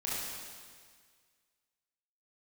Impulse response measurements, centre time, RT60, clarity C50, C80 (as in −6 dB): 130 ms, 1.8 s, −3.5 dB, −0.5 dB